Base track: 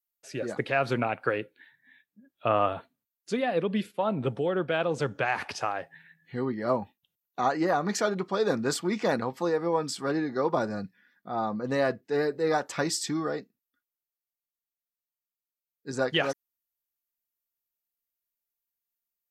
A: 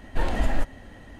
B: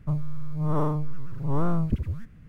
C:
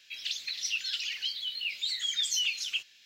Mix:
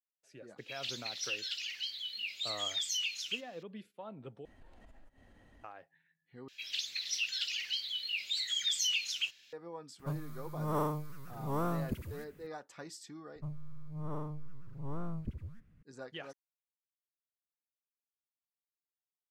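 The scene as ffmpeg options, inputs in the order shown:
-filter_complex "[3:a]asplit=2[s0][s1];[2:a]asplit=2[s2][s3];[0:a]volume=0.112[s4];[1:a]acompressor=threshold=0.0112:ratio=6:attack=3.2:release=140:knee=1:detection=peak[s5];[s2]aemphasis=mode=production:type=bsi[s6];[s4]asplit=3[s7][s8][s9];[s7]atrim=end=4.454[s10];[s5]atrim=end=1.19,asetpts=PTS-STARTPTS,volume=0.158[s11];[s8]atrim=start=5.636:end=6.484[s12];[s1]atrim=end=3.05,asetpts=PTS-STARTPTS,volume=0.75[s13];[s9]atrim=start=9.526[s14];[s0]atrim=end=3.05,asetpts=PTS-STARTPTS,volume=0.531,afade=t=in:d=0.004:c=hsin,afade=t=out:st=3.046:d=0.004:c=hsin,adelay=580[s15];[s6]atrim=end=2.48,asetpts=PTS-STARTPTS,volume=0.668,afade=t=in:d=0.004:c=hsin,afade=t=out:st=2.476:d=0.004:c=hsin,adelay=9990[s16];[s3]atrim=end=2.48,asetpts=PTS-STARTPTS,volume=0.188,afade=t=in:d=0.004:c=hsin,afade=t=out:st=2.476:d=0.004:c=hsin,adelay=13350[s17];[s10][s11]acrossfade=d=0.004:c1=hsin:c2=hsin[s18];[s18][s12]acrossfade=d=0.004:c1=hsin:c2=hsin[s19];[s19][s13]acrossfade=d=0.004:c1=hsin:c2=hsin[s20];[s20][s14]acrossfade=d=0.004:c1=hsin:c2=hsin[s21];[s21][s15][s16][s17]amix=inputs=4:normalize=0"

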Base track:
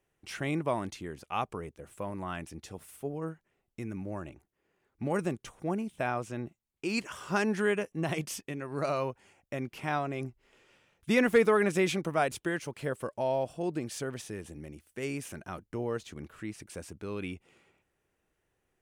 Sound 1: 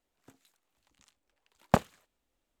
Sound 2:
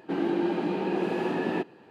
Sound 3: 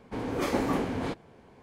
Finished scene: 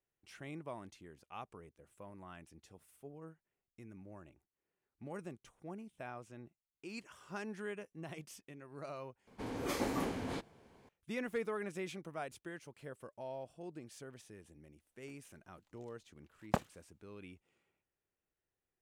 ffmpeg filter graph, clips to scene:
-filter_complex "[0:a]volume=0.178[s0];[3:a]highshelf=f=3800:g=8[s1];[s0]asplit=2[s2][s3];[s2]atrim=end=9.274[s4];[s1]atrim=end=1.62,asetpts=PTS-STARTPTS,volume=0.376[s5];[s3]atrim=start=10.886[s6];[1:a]atrim=end=2.6,asetpts=PTS-STARTPTS,volume=0.355,afade=t=in:d=0.004:c=hsin,afade=t=out:st=2.596:d=0.004:c=hsin,adelay=14800[s7];[s4][s5]acrossfade=d=0.004:c1=hsin:c2=hsin[s8];[s8][s6]acrossfade=d=0.004:c1=hsin:c2=hsin[s9];[s9][s7]amix=inputs=2:normalize=0"

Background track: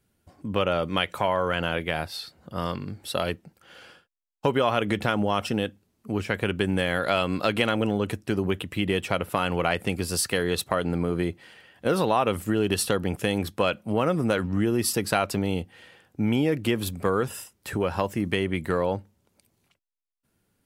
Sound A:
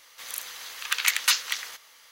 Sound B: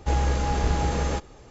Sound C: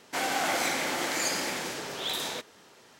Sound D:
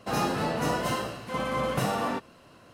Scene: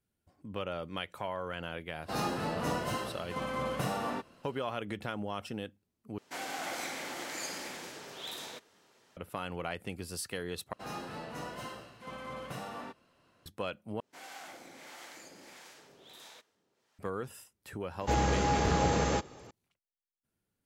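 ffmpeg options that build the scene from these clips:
-filter_complex "[4:a]asplit=2[s0][s1];[3:a]asplit=2[s2][s3];[0:a]volume=0.224[s4];[s1]equalizer=f=2400:w=0.44:g=3[s5];[s3]acrossover=split=580[s6][s7];[s6]aeval=exprs='val(0)*(1-0.7/2+0.7/2*cos(2*PI*1.5*n/s))':c=same[s8];[s7]aeval=exprs='val(0)*(1-0.7/2-0.7/2*cos(2*PI*1.5*n/s))':c=same[s9];[s8][s9]amix=inputs=2:normalize=0[s10];[2:a]highpass=110[s11];[s4]asplit=4[s12][s13][s14][s15];[s12]atrim=end=6.184[s16];[s2]atrim=end=2.99,asetpts=PTS-STARTPTS,volume=0.316[s17];[s13]atrim=start=9.166:end=10.734[s18];[s5]atrim=end=2.73,asetpts=PTS-STARTPTS,volume=0.178[s19];[s14]atrim=start=13.456:end=14.004[s20];[s10]atrim=end=2.99,asetpts=PTS-STARTPTS,volume=0.141[s21];[s15]atrim=start=16.986[s22];[s0]atrim=end=2.73,asetpts=PTS-STARTPTS,volume=0.501,afade=t=in:d=0.004:c=hsin,afade=t=out:st=2.726:d=0.004:c=hsin,adelay=2020[s23];[s11]atrim=end=1.5,asetpts=PTS-STARTPTS,volume=0.944,afade=t=in:d=0.004:c=hsin,afade=t=out:st=1.496:d=0.004:c=hsin,adelay=18010[s24];[s16][s17]acrossfade=d=0.004:c1=hsin:c2=hsin[s25];[s25][s18]acrossfade=d=0.004:c1=hsin:c2=hsin[s26];[s26][s19]acrossfade=d=0.004:c1=hsin:c2=hsin[s27];[s27][s20]acrossfade=d=0.004:c1=hsin:c2=hsin[s28];[s28][s21]acrossfade=d=0.004:c1=hsin:c2=hsin[s29];[s29][s22]acrossfade=d=0.004:c1=hsin:c2=hsin[s30];[s30][s23][s24]amix=inputs=3:normalize=0"

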